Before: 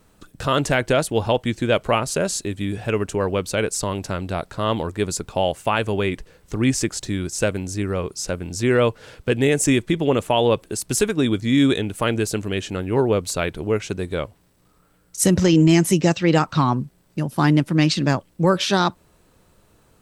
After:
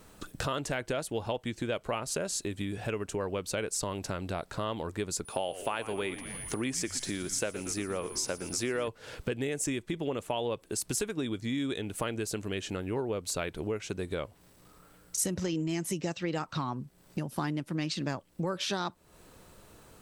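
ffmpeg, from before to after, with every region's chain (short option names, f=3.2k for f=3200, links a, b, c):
-filter_complex "[0:a]asettb=1/sr,asplit=3[a][b][c];[a]atrim=end=5.254[d];[b]atrim=start=5.25:end=8.88,asetpts=PTS-STARTPTS,afade=t=in:d=0.004:c=qsin,afade=t=out:st=3.626:d=0.004:c=qsin,highpass=f=270:p=1,aeval=exprs='val(0)+0.00631*sin(2*PI*9900*n/s)':c=same,asplit=7[e][f][g][h][i][j][k];[f]adelay=116,afreqshift=-85,volume=-15dB[l];[g]adelay=232,afreqshift=-170,volume=-19.4dB[m];[h]adelay=348,afreqshift=-255,volume=-23.9dB[n];[i]adelay=464,afreqshift=-340,volume=-28.3dB[o];[j]adelay=580,afreqshift=-425,volume=-32.7dB[p];[k]adelay=696,afreqshift=-510,volume=-37.2dB[q];[e][l][m][n][o][p][q]amix=inputs=7:normalize=0,atrim=end_sample=160083[r];[c]atrim=start=8.876[s];[d][r]acrossfade=d=0.004:c1=hsin:c2=qsin[t];[t][s]acrossfade=d=0.004:c1=qsin:c2=hsin,acompressor=threshold=-34dB:ratio=5,bass=f=250:g=-3,treble=f=4k:g=1,volume=3dB"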